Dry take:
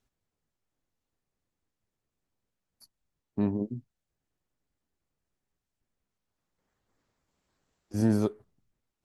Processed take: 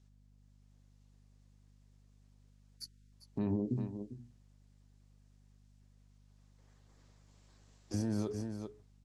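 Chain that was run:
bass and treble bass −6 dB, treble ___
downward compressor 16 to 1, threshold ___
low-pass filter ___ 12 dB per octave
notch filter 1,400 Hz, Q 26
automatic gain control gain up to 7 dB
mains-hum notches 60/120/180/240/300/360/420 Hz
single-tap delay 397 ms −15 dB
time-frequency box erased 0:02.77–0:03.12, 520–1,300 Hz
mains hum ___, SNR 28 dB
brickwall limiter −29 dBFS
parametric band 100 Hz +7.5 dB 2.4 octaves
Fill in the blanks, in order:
+9 dB, −32 dBFS, 6,400 Hz, 50 Hz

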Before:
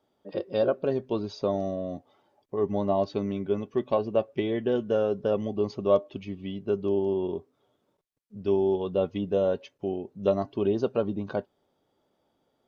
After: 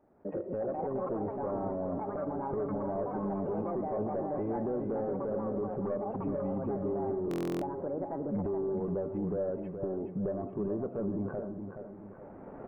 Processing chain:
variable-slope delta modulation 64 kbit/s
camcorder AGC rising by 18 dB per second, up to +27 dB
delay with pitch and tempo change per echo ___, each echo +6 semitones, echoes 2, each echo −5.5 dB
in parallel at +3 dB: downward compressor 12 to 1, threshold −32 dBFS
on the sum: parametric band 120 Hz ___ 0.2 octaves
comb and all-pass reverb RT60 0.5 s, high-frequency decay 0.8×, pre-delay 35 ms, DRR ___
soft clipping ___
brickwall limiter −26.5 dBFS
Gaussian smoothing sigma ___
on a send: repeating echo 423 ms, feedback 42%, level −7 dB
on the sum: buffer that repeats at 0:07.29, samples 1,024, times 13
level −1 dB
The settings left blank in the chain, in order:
363 ms, −2.5 dB, 19.5 dB, −16.5 dBFS, 6.6 samples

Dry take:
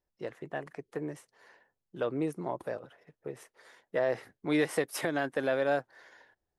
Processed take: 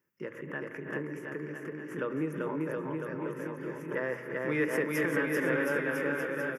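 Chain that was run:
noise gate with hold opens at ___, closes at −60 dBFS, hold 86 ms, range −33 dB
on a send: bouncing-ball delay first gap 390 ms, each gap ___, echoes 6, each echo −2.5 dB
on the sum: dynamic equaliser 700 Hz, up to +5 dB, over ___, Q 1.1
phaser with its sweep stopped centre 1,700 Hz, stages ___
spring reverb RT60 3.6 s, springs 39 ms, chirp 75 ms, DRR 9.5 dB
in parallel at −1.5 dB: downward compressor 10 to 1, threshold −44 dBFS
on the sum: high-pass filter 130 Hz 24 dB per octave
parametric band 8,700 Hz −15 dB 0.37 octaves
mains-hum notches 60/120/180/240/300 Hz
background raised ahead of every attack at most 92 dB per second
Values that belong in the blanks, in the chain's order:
−59 dBFS, 0.85×, −40 dBFS, 4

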